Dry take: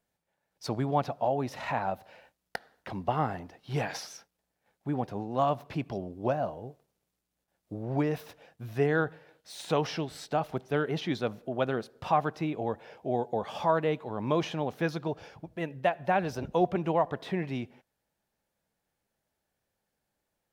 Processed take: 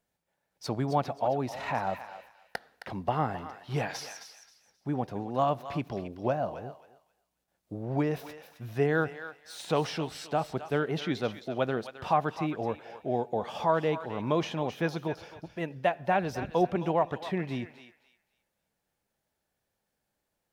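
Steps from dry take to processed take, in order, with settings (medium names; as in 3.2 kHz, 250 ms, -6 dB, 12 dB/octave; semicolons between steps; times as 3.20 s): thinning echo 265 ms, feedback 26%, high-pass 1.2 kHz, level -8.5 dB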